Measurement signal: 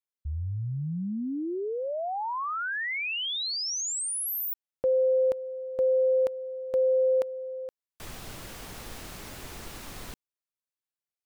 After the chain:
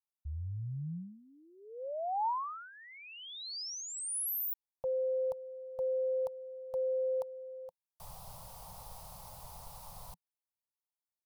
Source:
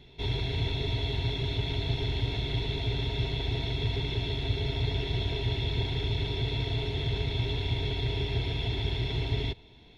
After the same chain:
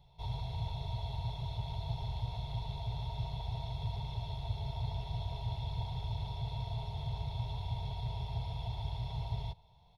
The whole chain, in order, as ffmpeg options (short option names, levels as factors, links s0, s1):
-af "firequalizer=gain_entry='entry(170,0);entry(240,-21);entry(360,-22);entry(520,-2);entry(900,8);entry(1600,-16);entry(4800,-2);entry(7000,-5);entry(10000,3)':delay=0.05:min_phase=1,volume=0.447"